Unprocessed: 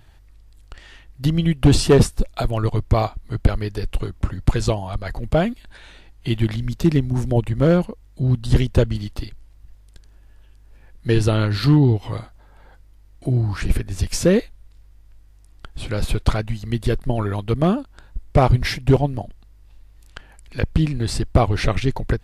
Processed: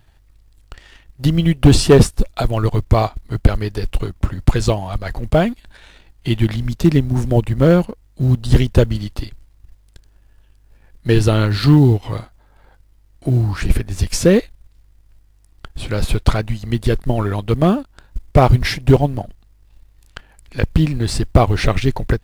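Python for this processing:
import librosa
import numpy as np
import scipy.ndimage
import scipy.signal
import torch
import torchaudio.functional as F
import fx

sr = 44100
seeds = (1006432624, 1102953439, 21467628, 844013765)

y = fx.law_mismatch(x, sr, coded='A')
y = y * librosa.db_to_amplitude(4.0)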